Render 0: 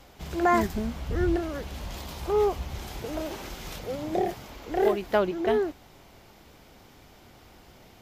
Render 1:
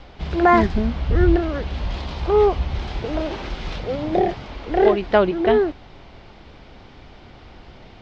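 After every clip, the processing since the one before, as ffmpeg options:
-af "lowpass=f=4.5k:w=0.5412,lowpass=f=4.5k:w=1.3066,lowshelf=f=61:g=8.5,volume=7.5dB"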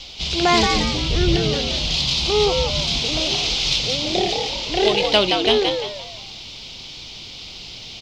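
-filter_complex "[0:a]asplit=2[a][b];[b]asplit=4[c][d][e][f];[c]adelay=173,afreqshift=91,volume=-5dB[g];[d]adelay=346,afreqshift=182,volume=-14.1dB[h];[e]adelay=519,afreqshift=273,volume=-23.2dB[i];[f]adelay=692,afreqshift=364,volume=-32.4dB[j];[g][h][i][j]amix=inputs=4:normalize=0[k];[a][k]amix=inputs=2:normalize=0,aexciter=amount=10.7:drive=7.8:freq=2.6k,volume=-3.5dB"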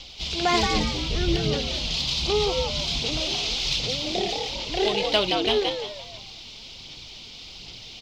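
-af "aphaser=in_gain=1:out_gain=1:delay=4.7:decay=0.31:speed=1.3:type=sinusoidal,volume=-6dB"

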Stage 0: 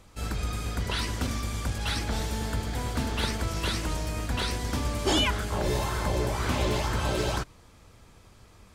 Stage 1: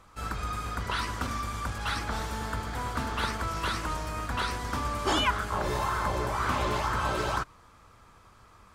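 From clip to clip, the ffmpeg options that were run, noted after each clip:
-af "equalizer=f=1.2k:w=1.3:g=12.5,volume=-5dB"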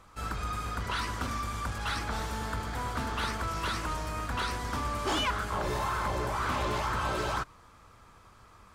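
-af "asoftclip=type=tanh:threshold=-24dB"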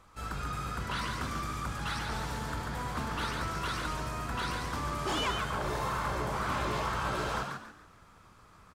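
-filter_complex "[0:a]asplit=5[a][b][c][d][e];[b]adelay=140,afreqshift=80,volume=-5dB[f];[c]adelay=280,afreqshift=160,volume=-14.9dB[g];[d]adelay=420,afreqshift=240,volume=-24.8dB[h];[e]adelay=560,afreqshift=320,volume=-34.7dB[i];[a][f][g][h][i]amix=inputs=5:normalize=0,volume=-3dB"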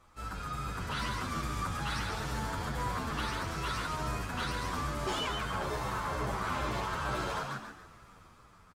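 -filter_complex "[0:a]dynaudnorm=f=280:g=7:m=6.5dB,alimiter=limit=-23dB:level=0:latency=1:release=263,asplit=2[a][b];[b]adelay=9,afreqshift=-2.3[c];[a][c]amix=inputs=2:normalize=1"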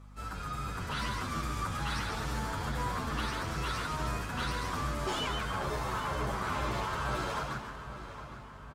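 -filter_complex "[0:a]aeval=exprs='val(0)+0.00316*(sin(2*PI*50*n/s)+sin(2*PI*2*50*n/s)/2+sin(2*PI*3*50*n/s)/3+sin(2*PI*4*50*n/s)/4+sin(2*PI*5*50*n/s)/5)':c=same,asplit=2[a][b];[b]adelay=812,lowpass=f=4.5k:p=1,volume=-12dB,asplit=2[c][d];[d]adelay=812,lowpass=f=4.5k:p=1,volume=0.53,asplit=2[e][f];[f]adelay=812,lowpass=f=4.5k:p=1,volume=0.53,asplit=2[g][h];[h]adelay=812,lowpass=f=4.5k:p=1,volume=0.53,asplit=2[i][j];[j]adelay=812,lowpass=f=4.5k:p=1,volume=0.53,asplit=2[k][l];[l]adelay=812,lowpass=f=4.5k:p=1,volume=0.53[m];[a][c][e][g][i][k][m]amix=inputs=7:normalize=0"

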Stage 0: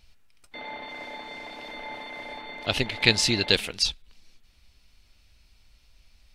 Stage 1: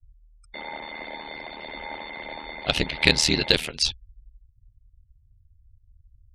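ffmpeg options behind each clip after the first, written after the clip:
-af "aeval=exprs='val(0)*sin(2*PI*39*n/s)':c=same,acontrast=22,afftfilt=real='re*gte(hypot(re,im),0.00501)':imag='im*gte(hypot(re,im),0.00501)':win_size=1024:overlap=0.75"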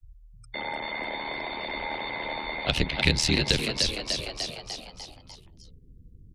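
-filter_complex "[0:a]asplit=7[a][b][c][d][e][f][g];[b]adelay=298,afreqshift=74,volume=-8dB[h];[c]adelay=596,afreqshift=148,volume=-13.5dB[i];[d]adelay=894,afreqshift=222,volume=-19dB[j];[e]adelay=1192,afreqshift=296,volume=-24.5dB[k];[f]adelay=1490,afreqshift=370,volume=-30.1dB[l];[g]adelay=1788,afreqshift=444,volume=-35.6dB[m];[a][h][i][j][k][l][m]amix=inputs=7:normalize=0,acrossover=split=760|1000[n][o][p];[o]asoftclip=type=hard:threshold=-39dB[q];[n][q][p]amix=inputs=3:normalize=0,acrossover=split=180[r][s];[s]acompressor=threshold=-31dB:ratio=2[t];[r][t]amix=inputs=2:normalize=0,volume=3.5dB"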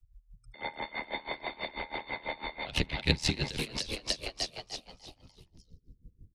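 -af "aecho=1:1:77|154|231|308:0.0891|0.049|0.027|0.0148,aeval=exprs='val(0)*pow(10,-21*(0.5-0.5*cos(2*PI*6.1*n/s))/20)':c=same"

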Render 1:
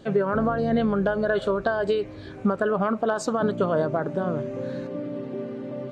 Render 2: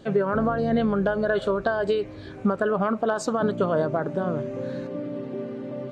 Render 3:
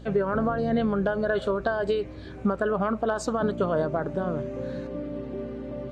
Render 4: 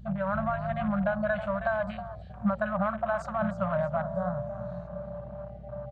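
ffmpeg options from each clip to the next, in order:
-af anull
-af "aeval=exprs='val(0)+0.00794*(sin(2*PI*60*n/s)+sin(2*PI*2*60*n/s)/2+sin(2*PI*3*60*n/s)/3+sin(2*PI*4*60*n/s)/4+sin(2*PI*5*60*n/s)/5)':c=same,volume=-2dB"
-filter_complex "[0:a]asplit=5[a][b][c][d][e];[b]adelay=318,afreqshift=36,volume=-11.5dB[f];[c]adelay=636,afreqshift=72,volume=-20.1dB[g];[d]adelay=954,afreqshift=108,volume=-28.8dB[h];[e]adelay=1272,afreqshift=144,volume=-37.4dB[i];[a][f][g][h][i]amix=inputs=5:normalize=0,afftfilt=real='re*(1-between(b*sr/4096,220,540))':imag='im*(1-between(b*sr/4096,220,540))':win_size=4096:overlap=0.75,afwtdn=0.0126,volume=-1dB"

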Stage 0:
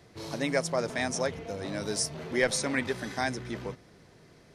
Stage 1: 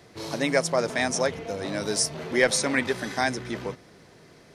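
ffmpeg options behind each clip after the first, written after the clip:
-af "lowshelf=f=130:g=-7.5,volume=5.5dB"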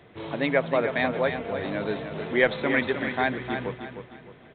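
-af "aecho=1:1:307|614|921|1228:0.398|0.143|0.0516|0.0186,aresample=8000,aresample=44100"

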